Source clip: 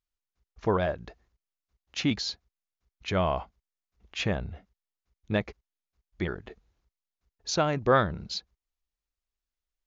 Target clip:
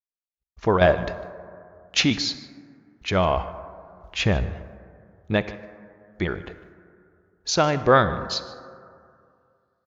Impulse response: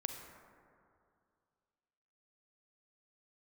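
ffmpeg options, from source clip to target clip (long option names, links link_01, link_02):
-filter_complex "[0:a]agate=range=-33dB:threshold=-59dB:ratio=3:detection=peak,asettb=1/sr,asplit=3[link_01][link_02][link_03];[link_01]atrim=end=0.814[link_04];[link_02]atrim=start=0.81:end=2.05,asetpts=PTS-STARTPTS,afade=type=in:duration=0.004:curve=qsin,afade=type=out:start_time=1.236:duration=0.004:curve=qsin,acontrast=74[link_05];[link_03]atrim=start=2.046[link_06];[link_04][link_05]acrossfade=duration=0.004:curve1=hsin:curve2=qsin[link_07];[link_07][link_06]acrossfade=duration=0.004:curve1=qsin:curve2=hsin,asettb=1/sr,asplit=3[link_08][link_09][link_10];[link_08]atrim=end=3.374[link_11];[link_09]atrim=start=3.37:end=4.45,asetpts=PTS-STARTPTS,afade=type=in:duration=0.004:curve=qsin,afade=type=out:start_time=1.076:duration=0.004:curve=qsin,lowshelf=frequency=86:gain=11.5[link_12];[link_10]atrim=start=4.446[link_13];[link_11][link_12]acrossfade=duration=0.004:curve1=hsin:curve2=qsin[link_14];[link_14][link_13]acrossfade=duration=0.004:curve1=qsin:curve2=hsin,asplit=2[link_15][link_16];[link_16]adelay=151.6,volume=-19dB,highshelf=frequency=4000:gain=-3.41[link_17];[link_15][link_17]amix=inputs=2:normalize=0,asplit=2[link_18][link_19];[1:a]atrim=start_sample=2205,lowshelf=frequency=340:gain=-6.5[link_20];[link_19][link_20]afir=irnorm=-1:irlink=0,volume=-2.5dB[link_21];[link_18][link_21]amix=inputs=2:normalize=0,volume=2dB"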